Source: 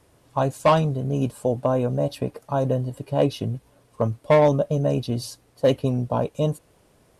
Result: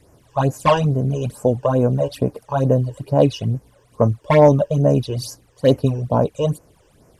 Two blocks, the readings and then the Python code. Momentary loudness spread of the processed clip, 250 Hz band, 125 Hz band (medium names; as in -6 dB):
11 LU, +5.0 dB, +6.0 dB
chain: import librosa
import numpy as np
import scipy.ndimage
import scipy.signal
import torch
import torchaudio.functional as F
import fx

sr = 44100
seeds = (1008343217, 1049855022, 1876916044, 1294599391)

y = fx.phaser_stages(x, sr, stages=12, low_hz=210.0, high_hz=3800.0, hz=2.3, feedback_pct=25)
y = F.gain(torch.from_numpy(y), 6.0).numpy()